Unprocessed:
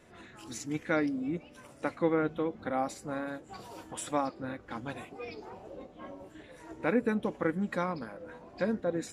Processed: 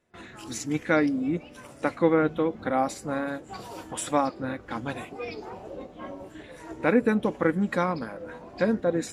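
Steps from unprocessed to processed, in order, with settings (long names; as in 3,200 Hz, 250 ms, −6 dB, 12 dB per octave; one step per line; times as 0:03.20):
noise gate with hold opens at −46 dBFS
level +6.5 dB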